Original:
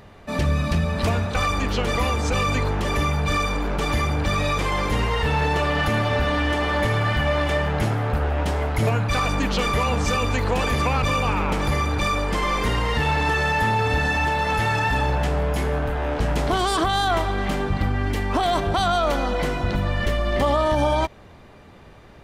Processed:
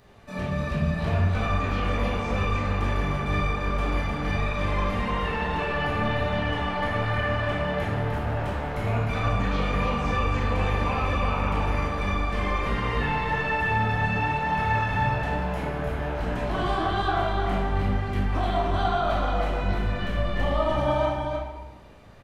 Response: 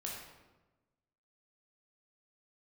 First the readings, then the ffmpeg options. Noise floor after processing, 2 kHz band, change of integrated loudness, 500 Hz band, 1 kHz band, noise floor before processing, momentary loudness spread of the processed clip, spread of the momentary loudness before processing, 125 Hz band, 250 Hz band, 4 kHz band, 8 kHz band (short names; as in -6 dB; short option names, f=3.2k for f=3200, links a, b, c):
-35 dBFS, -4.0 dB, -4.0 dB, -4.5 dB, -3.5 dB, -46 dBFS, 4 LU, 3 LU, -3.0 dB, -3.5 dB, -8.0 dB, -15.0 dB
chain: -filter_complex "[0:a]acrossover=split=3600[a][b];[a]flanger=delay=16.5:depth=5.5:speed=1.1[c];[b]acompressor=threshold=-52dB:ratio=8[d];[c][d]amix=inputs=2:normalize=0,aecho=1:1:304:0.562[e];[1:a]atrim=start_sample=2205[f];[e][f]afir=irnorm=-1:irlink=0,volume=-2dB"